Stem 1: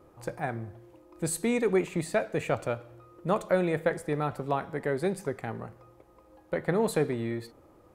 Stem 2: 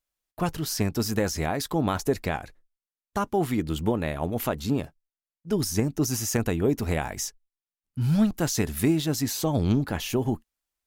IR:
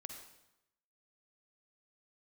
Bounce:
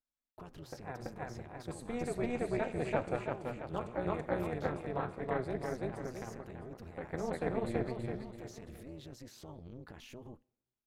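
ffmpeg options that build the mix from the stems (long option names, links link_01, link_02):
-filter_complex "[0:a]lowpass=12000,adelay=450,volume=-2.5dB,asplit=3[link_01][link_02][link_03];[link_02]volume=-11dB[link_04];[link_03]volume=-4dB[link_05];[1:a]acompressor=threshold=-28dB:ratio=6,alimiter=level_in=5.5dB:limit=-24dB:level=0:latency=1:release=53,volume=-5.5dB,volume=-7.5dB,asplit=3[link_06][link_07][link_08];[link_07]volume=-19.5dB[link_09];[link_08]apad=whole_len=370014[link_10];[link_01][link_10]sidechaincompress=threshold=-51dB:ratio=4:attack=16:release=860[link_11];[2:a]atrim=start_sample=2205[link_12];[link_04][link_09]amix=inputs=2:normalize=0[link_13];[link_13][link_12]afir=irnorm=-1:irlink=0[link_14];[link_05]aecho=0:1:332|664|996|1328|1660|1992:1|0.42|0.176|0.0741|0.0311|0.0131[link_15];[link_11][link_06][link_14][link_15]amix=inputs=4:normalize=0,aemphasis=mode=reproduction:type=50kf,tremolo=f=250:d=0.889"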